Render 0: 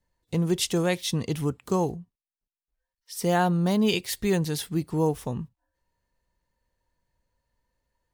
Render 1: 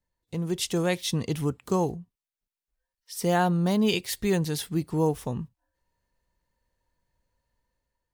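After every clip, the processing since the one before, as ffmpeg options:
ffmpeg -i in.wav -af "dynaudnorm=framelen=180:gausssize=7:maxgain=6.5dB,volume=-6.5dB" out.wav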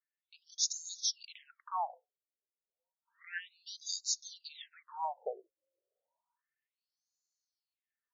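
ffmpeg -i in.wav -af "highshelf=frequency=2100:gain=-10.5,aexciter=amount=4.9:drive=8.2:freq=5100,afftfilt=real='re*between(b*sr/1024,440*pow(5200/440,0.5+0.5*sin(2*PI*0.31*pts/sr))/1.41,440*pow(5200/440,0.5+0.5*sin(2*PI*0.31*pts/sr))*1.41)':imag='im*between(b*sr/1024,440*pow(5200/440,0.5+0.5*sin(2*PI*0.31*pts/sr))/1.41,440*pow(5200/440,0.5+0.5*sin(2*PI*0.31*pts/sr))*1.41)':win_size=1024:overlap=0.75" out.wav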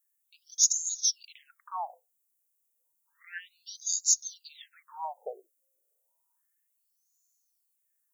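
ffmpeg -i in.wav -af "aexciter=amount=5.5:drive=7.9:freq=6400" out.wav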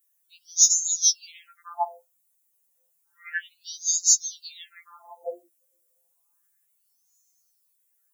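ffmpeg -i in.wav -af "afftfilt=real='re*2.83*eq(mod(b,8),0)':imag='im*2.83*eq(mod(b,8),0)':win_size=2048:overlap=0.75,volume=9dB" out.wav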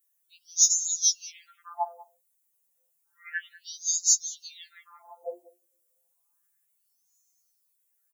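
ffmpeg -i in.wav -af "aecho=1:1:191:0.0944,volume=-3dB" out.wav

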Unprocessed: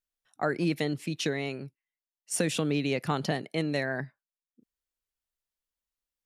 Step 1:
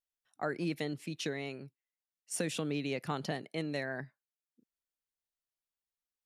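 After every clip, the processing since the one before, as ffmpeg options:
ffmpeg -i in.wav -af "lowshelf=frequency=62:gain=-8.5,volume=-6.5dB" out.wav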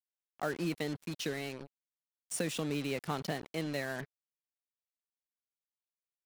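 ffmpeg -i in.wav -af "acrusher=bits=6:mix=0:aa=0.5" out.wav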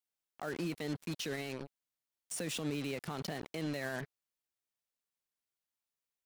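ffmpeg -i in.wav -af "alimiter=level_in=7.5dB:limit=-24dB:level=0:latency=1:release=49,volume=-7.5dB,volume=2.5dB" out.wav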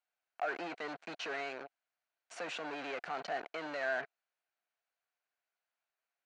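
ffmpeg -i in.wav -af "asoftclip=type=hard:threshold=-38dB,highpass=470,equalizer=frequency=700:width_type=q:width=4:gain=10,equalizer=frequency=1500:width_type=q:width=4:gain=8,equalizer=frequency=2400:width_type=q:width=4:gain=3,equalizer=frequency=3500:width_type=q:width=4:gain=-6,equalizer=frequency=5200:width_type=q:width=4:gain=-8,lowpass=frequency=5300:width=0.5412,lowpass=frequency=5300:width=1.3066,volume=3.5dB" out.wav

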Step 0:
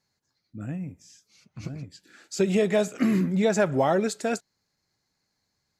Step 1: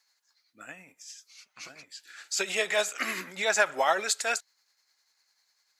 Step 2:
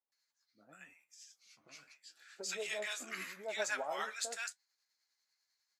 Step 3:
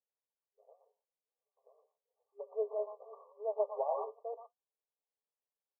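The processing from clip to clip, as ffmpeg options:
ffmpeg -i in.wav -af "highpass=1200,tremolo=f=10:d=0.41,volume=9dB" out.wav
ffmpeg -i in.wav -filter_complex "[0:a]flanger=delay=7.2:depth=7.6:regen=55:speed=0.87:shape=triangular,acrossover=split=920[link_01][link_02];[link_02]adelay=120[link_03];[link_01][link_03]amix=inputs=2:normalize=0,volume=-7dB" out.wav
ffmpeg -i in.wav -af "tiltshelf=frequency=820:gain=7,adynamicsmooth=sensitivity=6.5:basefreq=560,afftfilt=real='re*between(b*sr/4096,400,1200)':imag='im*between(b*sr/4096,400,1200)':win_size=4096:overlap=0.75,volume=5dB" out.wav

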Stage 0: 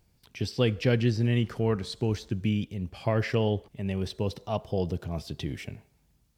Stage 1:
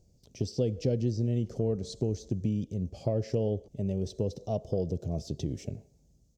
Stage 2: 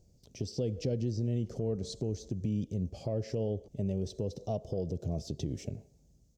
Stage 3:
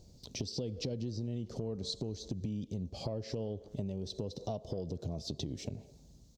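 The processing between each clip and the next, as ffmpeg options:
ffmpeg -i in.wav -af "firequalizer=gain_entry='entry(340,0);entry(570,3);entry(950,-17);entry(1600,-22);entry(6400,3);entry(9600,-13)':delay=0.05:min_phase=1,acompressor=threshold=-31dB:ratio=2.5,volume=3dB" out.wav
ffmpeg -i in.wav -af "alimiter=limit=-23.5dB:level=0:latency=1:release=123" out.wav
ffmpeg -i in.wav -filter_complex "[0:a]equalizer=frequency=250:width_type=o:width=0.67:gain=3,equalizer=frequency=1000:width_type=o:width=0.67:gain=7,equalizer=frequency=4000:width_type=o:width=0.67:gain=11,asplit=2[link_01][link_02];[link_02]adelay=210,highpass=300,lowpass=3400,asoftclip=type=hard:threshold=-28dB,volume=-26dB[link_03];[link_01][link_03]amix=inputs=2:normalize=0,acompressor=threshold=-41dB:ratio=5,volume=5.5dB" out.wav

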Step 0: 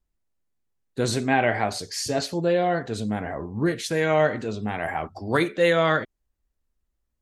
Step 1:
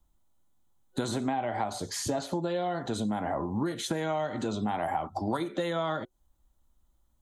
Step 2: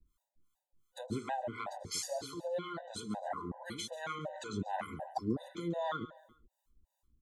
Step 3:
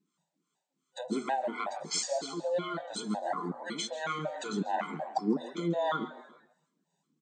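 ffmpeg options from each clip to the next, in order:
ffmpeg -i in.wav -filter_complex "[0:a]acrossover=split=180|1100|2300[link_01][link_02][link_03][link_04];[link_01]acompressor=threshold=-45dB:ratio=4[link_05];[link_02]acompressor=threshold=-27dB:ratio=4[link_06];[link_03]acompressor=threshold=-38dB:ratio=4[link_07];[link_04]acompressor=threshold=-41dB:ratio=4[link_08];[link_05][link_06][link_07][link_08]amix=inputs=4:normalize=0,superequalizer=7b=0.501:9b=1.58:11b=0.447:12b=0.398:14b=0.501,acompressor=threshold=-36dB:ratio=6,volume=8.5dB" out.wav
ffmpeg -i in.wav -filter_complex "[0:a]acrossover=split=610[link_01][link_02];[link_01]aeval=exprs='val(0)*(1-1/2+1/2*cos(2*PI*2.8*n/s))':channel_layout=same[link_03];[link_02]aeval=exprs='val(0)*(1-1/2-1/2*cos(2*PI*2.8*n/s))':channel_layout=same[link_04];[link_03][link_04]amix=inputs=2:normalize=0,aecho=1:1:138|276|414:0.15|0.0598|0.0239,afftfilt=real='re*gt(sin(2*PI*2.7*pts/sr)*(1-2*mod(floor(b*sr/1024/500),2)),0)':imag='im*gt(sin(2*PI*2.7*pts/sr)*(1-2*mod(floor(b*sr/1024/500),2)),0)':win_size=1024:overlap=0.75,volume=1.5dB" out.wav
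ffmpeg -i in.wav -filter_complex "[0:a]bandreject=frequency=244.7:width_type=h:width=4,bandreject=frequency=489.4:width_type=h:width=4,bandreject=frequency=734.1:width_type=h:width=4,bandreject=frequency=978.8:width_type=h:width=4,bandreject=frequency=1223.5:width_type=h:width=4,bandreject=frequency=1468.2:width_type=h:width=4,bandreject=frequency=1712.9:width_type=h:width=4,bandreject=frequency=1957.6:width_type=h:width=4,bandreject=frequency=2202.3:width_type=h:width=4,bandreject=frequency=2447:width_type=h:width=4,bandreject=frequency=2691.7:width_type=h:width=4,bandreject=frequency=2936.4:width_type=h:width=4,bandreject=frequency=3181.1:width_type=h:width=4,bandreject=frequency=3425.8:width_type=h:width=4,bandreject=frequency=3670.5:width_type=h:width=4,bandreject=frequency=3915.2:width_type=h:width=4,bandreject=frequency=4159.9:width_type=h:width=4,bandreject=frequency=4404.6:width_type=h:width=4,bandreject=frequency=4649.3:width_type=h:width=4,bandreject=frequency=4894:width_type=h:width=4,bandreject=frequency=5138.7:width_type=h:width=4,asplit=4[link_01][link_02][link_03][link_04];[link_02]adelay=160,afreqshift=130,volume=-20dB[link_05];[link_03]adelay=320,afreqshift=260,volume=-27.3dB[link_06];[link_04]adelay=480,afreqshift=390,volume=-34.7dB[link_07];[link_01][link_05][link_06][link_07]amix=inputs=4:normalize=0,afftfilt=real='re*between(b*sr/4096,150,8700)':imag='im*between(b*sr/4096,150,8700)':win_size=4096:overlap=0.75,volume=6dB" out.wav

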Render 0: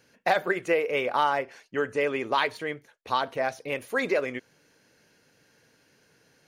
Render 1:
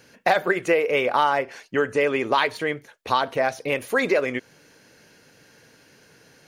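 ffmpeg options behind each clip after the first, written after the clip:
ffmpeg -i in.wav -af "acompressor=threshold=-33dB:ratio=1.5,volume=9dB" out.wav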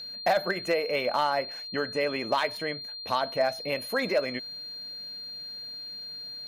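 ffmpeg -i in.wav -af "equalizer=frequency=200:width_type=o:width=0.33:gain=7,equalizer=frequency=400:width_type=o:width=0.33:gain=-5,equalizer=frequency=630:width_type=o:width=0.33:gain=7,equalizer=frequency=6300:width_type=o:width=0.33:gain=-4,equalizer=frequency=12500:width_type=o:width=0.33:gain=10,aeval=exprs='val(0)+0.0316*sin(2*PI*4200*n/s)':channel_layout=same,asoftclip=type=hard:threshold=-9.5dB,volume=-7dB" out.wav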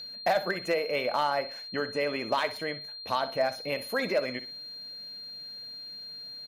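ffmpeg -i in.wav -af "aecho=1:1:62|124|186:0.2|0.0539|0.0145,volume=-1.5dB" out.wav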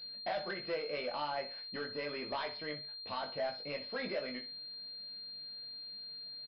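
ffmpeg -i in.wav -filter_complex "[0:a]asoftclip=type=tanh:threshold=-24dB,asplit=2[link_01][link_02];[link_02]adelay=20,volume=-4dB[link_03];[link_01][link_03]amix=inputs=2:normalize=0,aresample=11025,aresample=44100,volume=-8.5dB" out.wav

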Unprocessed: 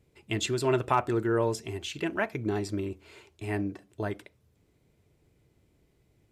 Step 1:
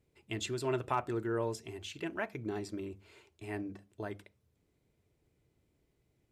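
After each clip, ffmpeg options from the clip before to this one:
ffmpeg -i in.wav -af "bandreject=frequency=50:width_type=h:width=6,bandreject=frequency=100:width_type=h:width=6,bandreject=frequency=150:width_type=h:width=6,bandreject=frequency=200:width_type=h:width=6,volume=-7.5dB" out.wav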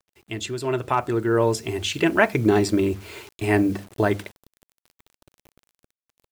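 ffmpeg -i in.wav -af "acrusher=bits=10:mix=0:aa=0.000001,dynaudnorm=framelen=620:gausssize=5:maxgain=13.5dB,volume=6.5dB" out.wav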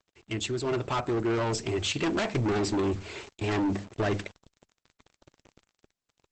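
ffmpeg -i in.wav -af "volume=23.5dB,asoftclip=hard,volume=-23.5dB" -ar 48000 -c:a libopus -b:a 12k out.opus

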